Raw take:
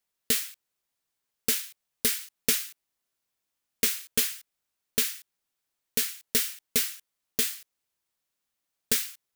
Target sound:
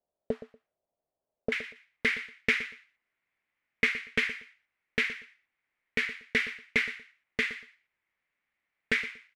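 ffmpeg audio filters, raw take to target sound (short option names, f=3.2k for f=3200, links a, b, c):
-af "asetnsamples=n=441:p=0,asendcmd='1.52 lowpass f 2100',lowpass=f=630:t=q:w=4.9,aecho=1:1:119|238:0.178|0.0391"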